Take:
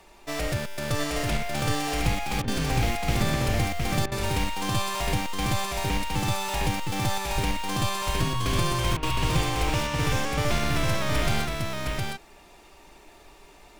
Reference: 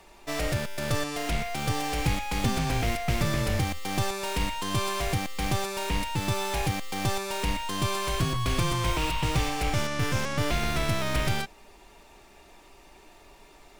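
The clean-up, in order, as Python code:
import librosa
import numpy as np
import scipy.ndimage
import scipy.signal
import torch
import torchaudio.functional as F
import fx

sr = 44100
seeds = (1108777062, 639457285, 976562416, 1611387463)

y = fx.fix_deplosive(x, sr, at_s=(7.34, 8.51))
y = fx.fix_interpolate(y, sr, at_s=(2.42, 4.06, 8.97), length_ms=56.0)
y = fx.fix_echo_inverse(y, sr, delay_ms=713, level_db=-3.0)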